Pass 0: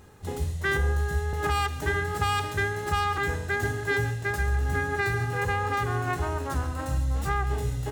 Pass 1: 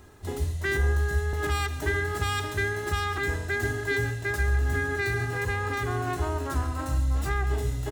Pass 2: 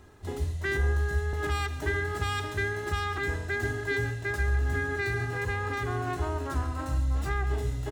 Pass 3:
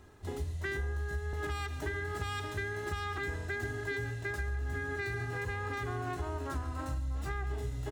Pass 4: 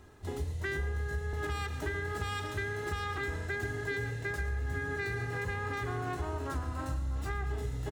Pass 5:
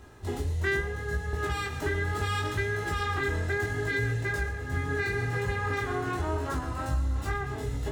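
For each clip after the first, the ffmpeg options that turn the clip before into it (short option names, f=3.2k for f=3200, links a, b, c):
-filter_complex "[0:a]aecho=1:1:3:0.42,acrossover=split=430|2000[a][b][c];[b]alimiter=level_in=2dB:limit=-24dB:level=0:latency=1,volume=-2dB[d];[a][d][c]amix=inputs=3:normalize=0"
-af "highshelf=f=7.9k:g=-7.5,volume=-2dB"
-af "acompressor=threshold=-29dB:ratio=6,volume=-3dB"
-filter_complex "[0:a]asplit=7[a][b][c][d][e][f][g];[b]adelay=112,afreqshift=33,volume=-16dB[h];[c]adelay=224,afreqshift=66,volume=-20.2dB[i];[d]adelay=336,afreqshift=99,volume=-24.3dB[j];[e]adelay=448,afreqshift=132,volume=-28.5dB[k];[f]adelay=560,afreqshift=165,volume=-32.6dB[l];[g]adelay=672,afreqshift=198,volume=-36.8dB[m];[a][h][i][j][k][l][m]amix=inputs=7:normalize=0,volume=1dB"
-af "flanger=delay=17.5:depth=5.4:speed=0.73,volume=8.5dB"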